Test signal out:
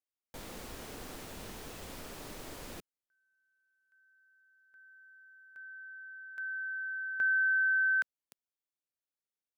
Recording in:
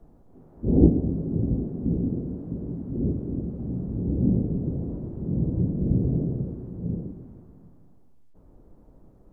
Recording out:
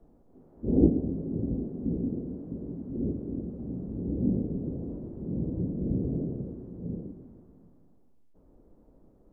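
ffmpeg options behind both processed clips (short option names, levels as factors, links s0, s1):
-af "equalizer=f=125:t=o:w=1:g=-3,equalizer=f=250:t=o:w=1:g=4,equalizer=f=500:t=o:w=1:g=4,volume=0.447"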